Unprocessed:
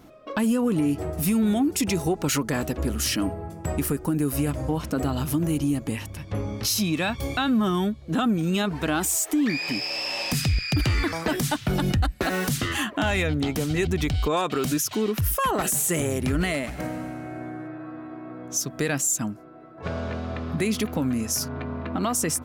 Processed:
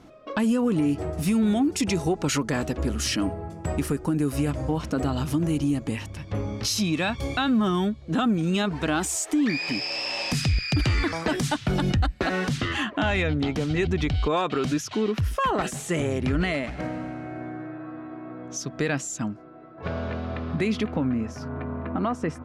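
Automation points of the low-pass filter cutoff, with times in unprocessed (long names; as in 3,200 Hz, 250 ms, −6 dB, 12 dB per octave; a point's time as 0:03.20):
0:11.69 7,700 Hz
0:12.42 4,500 Hz
0:20.64 4,500 Hz
0:21.18 1,900 Hz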